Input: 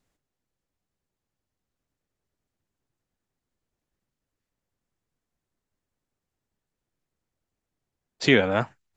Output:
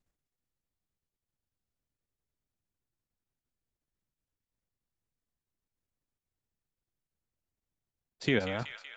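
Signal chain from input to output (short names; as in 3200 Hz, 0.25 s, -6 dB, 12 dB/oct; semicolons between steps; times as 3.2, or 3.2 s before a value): low shelf 150 Hz +7 dB; level quantiser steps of 9 dB; thin delay 0.188 s, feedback 67%, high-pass 1900 Hz, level -6.5 dB; gain -7.5 dB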